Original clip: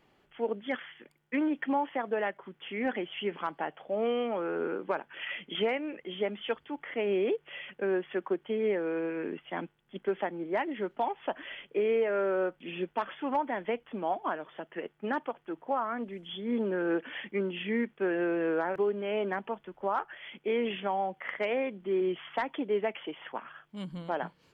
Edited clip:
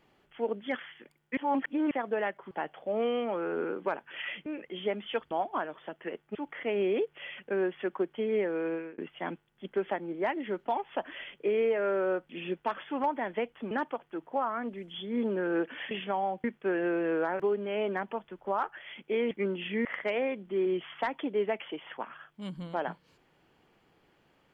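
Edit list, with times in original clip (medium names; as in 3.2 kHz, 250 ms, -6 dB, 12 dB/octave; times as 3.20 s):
1.37–1.91 s: reverse
2.51–3.54 s: delete
5.49–5.81 s: delete
9.04–9.29 s: fade out
14.02–15.06 s: move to 6.66 s
17.26–17.80 s: swap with 20.67–21.20 s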